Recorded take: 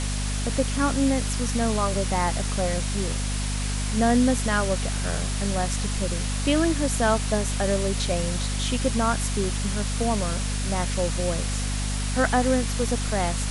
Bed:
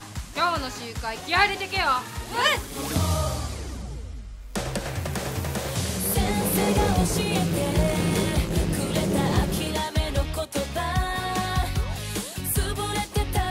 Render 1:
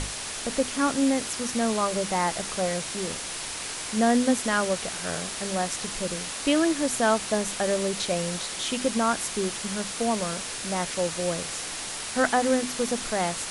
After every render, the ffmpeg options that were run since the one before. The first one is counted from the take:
-af "bandreject=f=50:t=h:w=6,bandreject=f=100:t=h:w=6,bandreject=f=150:t=h:w=6,bandreject=f=200:t=h:w=6,bandreject=f=250:t=h:w=6"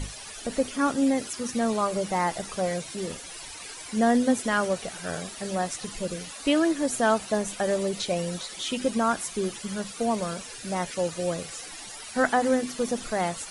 -af "afftdn=nr=14:nf=-35"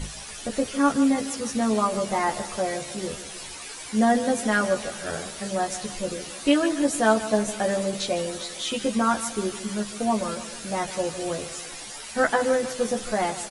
-filter_complex "[0:a]asplit=2[s0][s1];[s1]adelay=14,volume=0.75[s2];[s0][s2]amix=inputs=2:normalize=0,aecho=1:1:154|308|462|616|770:0.2|0.108|0.0582|0.0314|0.017"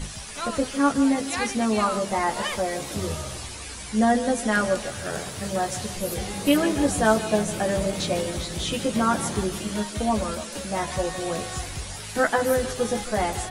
-filter_complex "[1:a]volume=0.355[s0];[0:a][s0]amix=inputs=2:normalize=0"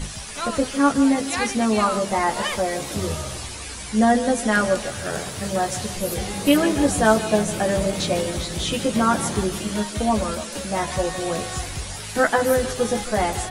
-af "volume=1.41"

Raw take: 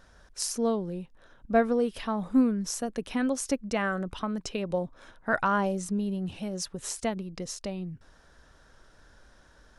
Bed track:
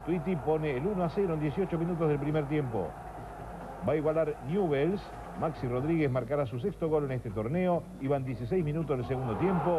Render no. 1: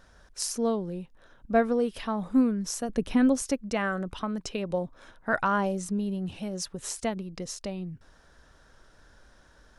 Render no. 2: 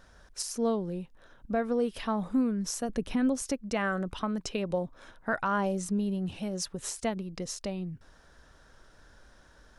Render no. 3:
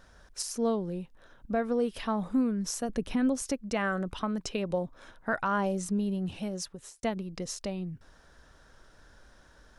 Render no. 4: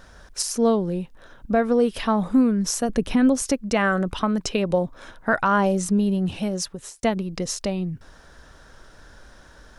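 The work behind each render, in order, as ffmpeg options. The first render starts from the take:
-filter_complex "[0:a]asettb=1/sr,asplit=3[s0][s1][s2];[s0]atrim=end=2.894[s3];[s1]atrim=start=2.89:end=3.42,asetpts=PTS-STARTPTS,afade=t=in:d=0.004:c=qsin,afade=t=out:st=0.526:d=0.004:c=qsin,lowshelf=f=350:g=10[s4];[s2]atrim=start=3.416[s5];[s3][s4]acrossfade=d=0.004:c1=hsin:c2=qsin[s6];[s6][s5]acrossfade=d=0.004:c1=qsin:c2=hsin"
-af "alimiter=limit=0.112:level=0:latency=1:release=242"
-filter_complex "[0:a]asplit=2[s0][s1];[s0]atrim=end=7.03,asetpts=PTS-STARTPTS,afade=t=out:st=6.45:d=0.58[s2];[s1]atrim=start=7.03,asetpts=PTS-STARTPTS,afade=t=in:d=0.004:c=hsin[s3];[s2][s3]concat=n=2:v=0:a=1"
-af "volume=2.82"

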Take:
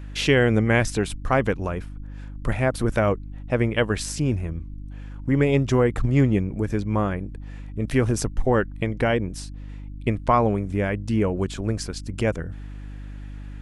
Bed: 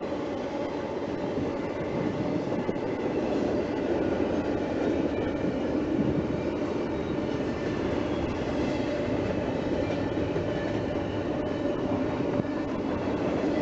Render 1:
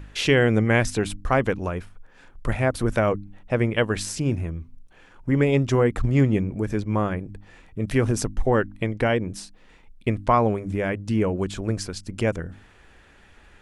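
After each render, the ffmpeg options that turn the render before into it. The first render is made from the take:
-af "bandreject=f=50:t=h:w=4,bandreject=f=100:t=h:w=4,bandreject=f=150:t=h:w=4,bandreject=f=200:t=h:w=4,bandreject=f=250:t=h:w=4,bandreject=f=300:t=h:w=4"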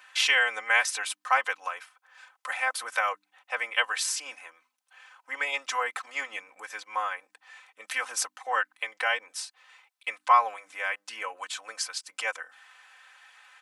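-af "highpass=f=890:w=0.5412,highpass=f=890:w=1.3066,aecho=1:1:3.9:0.89"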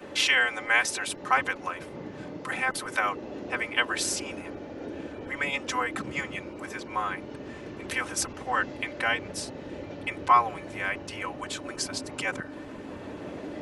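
-filter_complex "[1:a]volume=0.282[s0];[0:a][s0]amix=inputs=2:normalize=0"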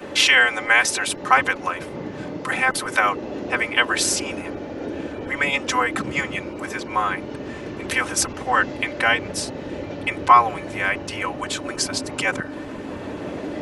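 -af "volume=2.51,alimiter=limit=0.794:level=0:latency=1"

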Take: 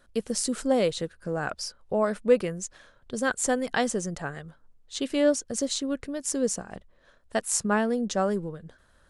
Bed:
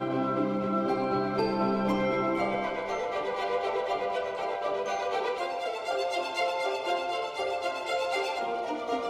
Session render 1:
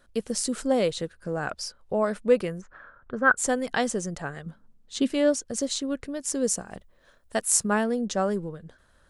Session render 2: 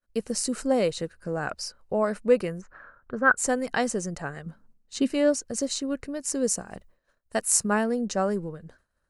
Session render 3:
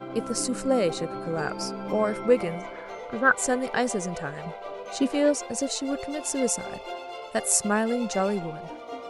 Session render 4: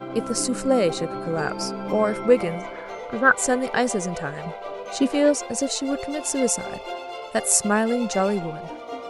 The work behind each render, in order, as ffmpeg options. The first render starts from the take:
-filter_complex "[0:a]asplit=3[s0][s1][s2];[s0]afade=t=out:st=2.6:d=0.02[s3];[s1]lowpass=f=1400:t=q:w=4.3,afade=t=in:st=2.6:d=0.02,afade=t=out:st=3.36:d=0.02[s4];[s2]afade=t=in:st=3.36:d=0.02[s5];[s3][s4][s5]amix=inputs=3:normalize=0,asettb=1/sr,asplit=3[s6][s7][s8];[s6]atrim=end=4.464[s9];[s7]atrim=start=4.46:end=5.11,asetpts=PTS-STARTPTS,afade=t=in:d=0.004:c=qsin,afade=t=out:st=0.646:d=0.004:c=qsin,equalizer=f=210:t=o:w=0.77:g=14[s10];[s8]atrim=start=5.106[s11];[s9][s10]acrossfade=d=0.004:c1=hsin:c2=qsin[s12];[s12][s11]acrossfade=d=0.004:c1=qsin:c2=hsin,asettb=1/sr,asplit=3[s13][s14][s15];[s13]atrim=end=6.414[s16];[s14]atrim=start=6.41:end=7.84,asetpts=PTS-STARTPTS,afade=t=in:d=0.004:c=qsin,afade=t=out:st=1.426:d=0.004:c=qsin,highshelf=f=9500:g=12[s17];[s15]atrim=start=7.836[s18];[s16][s17]acrossfade=d=0.004:c1=hsin:c2=qsin[s19];[s19][s18]acrossfade=d=0.004:c1=qsin:c2=hsin"
-af "bandreject=f=3400:w=5,agate=range=0.0224:threshold=0.00355:ratio=3:detection=peak"
-filter_complex "[1:a]volume=0.447[s0];[0:a][s0]amix=inputs=2:normalize=0"
-af "volume=1.5"

